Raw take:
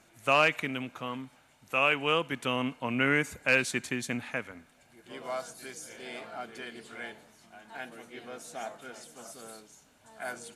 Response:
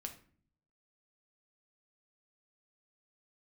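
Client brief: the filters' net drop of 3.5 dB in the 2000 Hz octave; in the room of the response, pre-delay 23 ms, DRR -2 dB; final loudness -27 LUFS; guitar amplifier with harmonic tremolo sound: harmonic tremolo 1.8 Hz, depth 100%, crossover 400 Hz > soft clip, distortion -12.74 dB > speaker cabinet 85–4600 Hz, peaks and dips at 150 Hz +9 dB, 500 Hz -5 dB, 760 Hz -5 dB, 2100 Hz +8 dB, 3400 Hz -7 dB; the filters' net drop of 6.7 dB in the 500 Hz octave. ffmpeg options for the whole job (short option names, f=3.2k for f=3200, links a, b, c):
-filter_complex "[0:a]equalizer=f=500:t=o:g=-4,equalizer=f=2k:t=o:g=-8,asplit=2[a][b];[1:a]atrim=start_sample=2205,adelay=23[c];[b][c]afir=irnorm=-1:irlink=0,volume=5dB[d];[a][d]amix=inputs=2:normalize=0,acrossover=split=400[e][f];[e]aeval=exprs='val(0)*(1-1/2+1/2*cos(2*PI*1.8*n/s))':c=same[g];[f]aeval=exprs='val(0)*(1-1/2-1/2*cos(2*PI*1.8*n/s))':c=same[h];[g][h]amix=inputs=2:normalize=0,asoftclip=threshold=-23dB,highpass=85,equalizer=f=150:t=q:w=4:g=9,equalizer=f=500:t=q:w=4:g=-5,equalizer=f=760:t=q:w=4:g=-5,equalizer=f=2.1k:t=q:w=4:g=8,equalizer=f=3.4k:t=q:w=4:g=-7,lowpass=f=4.6k:w=0.5412,lowpass=f=4.6k:w=1.3066,volume=7.5dB"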